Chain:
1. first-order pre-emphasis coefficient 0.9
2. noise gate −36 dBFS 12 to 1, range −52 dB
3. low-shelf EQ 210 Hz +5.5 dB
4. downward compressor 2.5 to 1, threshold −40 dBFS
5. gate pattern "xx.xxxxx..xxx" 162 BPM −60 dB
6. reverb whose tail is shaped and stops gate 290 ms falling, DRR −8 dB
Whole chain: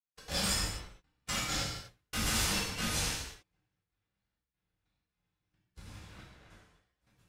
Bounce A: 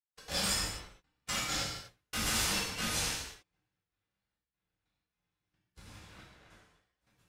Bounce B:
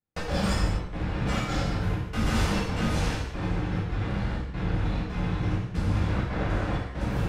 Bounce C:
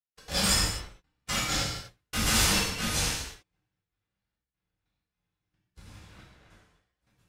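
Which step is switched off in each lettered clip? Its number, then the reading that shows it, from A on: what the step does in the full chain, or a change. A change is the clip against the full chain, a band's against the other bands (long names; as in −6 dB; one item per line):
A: 3, 125 Hz band −4.0 dB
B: 1, 8 kHz band −18.5 dB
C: 4, average gain reduction 3.5 dB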